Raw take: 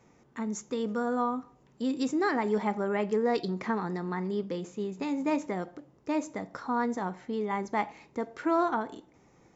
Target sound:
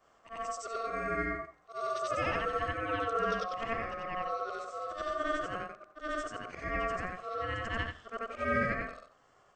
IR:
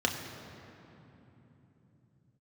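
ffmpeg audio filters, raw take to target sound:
-af "afftfilt=real='re':imag='-im':win_size=8192:overlap=0.75,aeval=exprs='val(0)*sin(2*PI*910*n/s)':channel_layout=same,volume=3dB"

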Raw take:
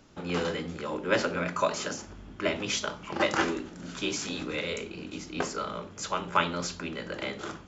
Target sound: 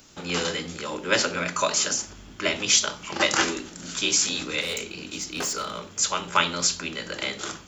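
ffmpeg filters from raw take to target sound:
ffmpeg -i in.wav -filter_complex "[0:a]crystalizer=i=5.5:c=0,asplit=3[link_01][link_02][link_03];[link_01]afade=type=out:start_time=4.6:duration=0.02[link_04];[link_02]volume=24.5dB,asoftclip=hard,volume=-24.5dB,afade=type=in:start_time=4.6:duration=0.02,afade=type=out:start_time=5.89:duration=0.02[link_05];[link_03]afade=type=in:start_time=5.89:duration=0.02[link_06];[link_04][link_05][link_06]amix=inputs=3:normalize=0" out.wav

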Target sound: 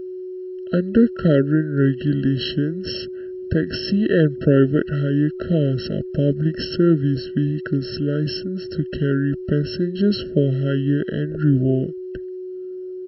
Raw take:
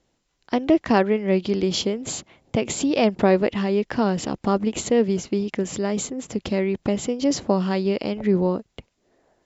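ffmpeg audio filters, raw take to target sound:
ffmpeg -i in.wav -af "aeval=exprs='val(0)+0.0282*sin(2*PI*510*n/s)':channel_layout=same,asetrate=31884,aresample=44100,afftfilt=real='re*eq(mod(floor(b*sr/1024/650),2),0)':imag='im*eq(mod(floor(b*sr/1024/650),2),0)':win_size=1024:overlap=0.75,volume=2.5dB" out.wav

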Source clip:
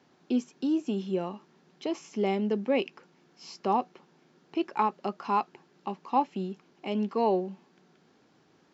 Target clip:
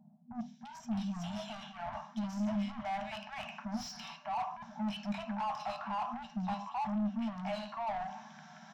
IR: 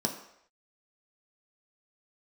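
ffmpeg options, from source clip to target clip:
-filter_complex "[0:a]highpass=58,acrossover=split=450|2800[link_01][link_02][link_03];[link_03]adelay=350[link_04];[link_02]adelay=610[link_05];[link_01][link_05][link_04]amix=inputs=3:normalize=0,areverse,acompressor=threshold=-39dB:ratio=12,areverse,tiltshelf=frequency=1500:gain=-5,asplit=2[link_06][link_07];[1:a]atrim=start_sample=2205,afade=type=out:start_time=0.2:duration=0.01,atrim=end_sample=9261,lowshelf=frequency=130:gain=8[link_08];[link_07][link_08]afir=irnorm=-1:irlink=0,volume=-4.5dB[link_09];[link_06][link_09]amix=inputs=2:normalize=0,asplit=2[link_10][link_11];[link_11]highpass=frequency=720:poles=1,volume=23dB,asoftclip=type=tanh:threshold=-24dB[link_12];[link_10][link_12]amix=inputs=2:normalize=0,lowpass=frequency=1200:poles=1,volume=-6dB,afftfilt=real='re*(1-between(b*sr/4096,240,600))':imag='im*(1-between(b*sr/4096,240,600))':win_size=4096:overlap=0.75,volume=-2.5dB"

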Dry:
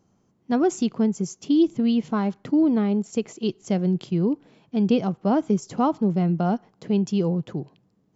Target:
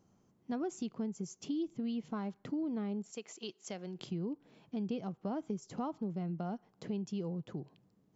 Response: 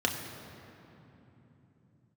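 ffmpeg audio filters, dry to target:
-filter_complex "[0:a]asettb=1/sr,asplit=3[link_01][link_02][link_03];[link_01]atrim=end=3.124[link_04];[link_02]atrim=start=3.12:end=3.99,asetpts=PTS-STARTPTS,afade=type=in:duration=0.004:curve=qsin,afade=type=out:start_time=0.866:duration=0.004:curve=qsin,highpass=frequency=1100:poles=1[link_05];[link_03]atrim=start=3.986[link_06];[link_04][link_05]acrossfade=duration=0.004:curve1=hsin:curve2=qsin[link_07];[link_07][link_06]acrossfade=duration=0.004:curve1=qsin:curve2=hsin,acompressor=threshold=-36dB:ratio=2.5,volume=-4.5dB"

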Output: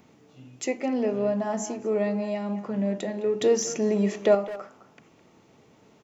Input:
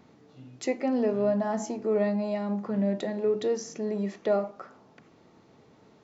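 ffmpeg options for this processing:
ffmpeg -i in.wav -filter_complex "[0:a]asettb=1/sr,asplit=3[link_01][link_02][link_03];[link_01]atrim=end=3.414[link_04];[link_02]atrim=start=3.41:end=4.35,asetpts=PTS-STARTPTS,afade=type=in:duration=0.004:curve=qsin,afade=type=out:start_time=0.936:duration=0.004:curve=qsin,acontrast=65[link_05];[link_03]atrim=start=4.346[link_06];[link_04][link_05]acrossfade=duration=0.004:curve1=hsin:curve2=qsin[link_07];[link_07][link_06]acrossfade=duration=0.004:curve1=qsin:curve2=hsin,aexciter=amount=1.1:drive=7.6:freq=2300,asplit=2[link_08][link_09];[link_09]adelay=210,highpass=300,lowpass=3400,asoftclip=type=hard:threshold=-18dB,volume=-13dB[link_10];[link_08][link_10]amix=inputs=2:normalize=0" out.wav

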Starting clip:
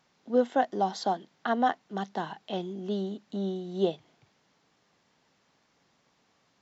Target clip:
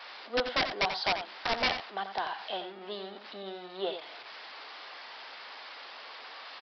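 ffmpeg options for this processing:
ffmpeg -i in.wav -filter_complex "[0:a]aeval=exprs='val(0)+0.5*0.0112*sgn(val(0))':channel_layout=same,highpass=710,afftdn=noise_reduction=14:noise_floor=-58,aresample=11025,aeval=exprs='(mod(14.1*val(0)+1,2)-1)/14.1':channel_layout=same,aresample=44100,asplit=2[link_01][link_02];[link_02]adelay=87.46,volume=-9dB,highshelf=frequency=4000:gain=-1.97[link_03];[link_01][link_03]amix=inputs=2:normalize=0,volume=1.5dB" out.wav

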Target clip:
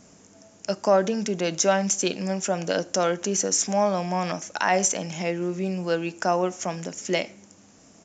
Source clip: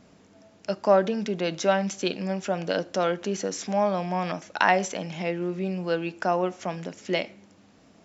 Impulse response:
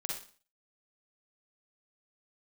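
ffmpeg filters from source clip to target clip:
-af "aresample=16000,aresample=44100,aexciter=amount=7.8:drive=2.8:freq=5800,alimiter=level_in=9.5dB:limit=-1dB:release=50:level=0:latency=1,volume=-8dB"

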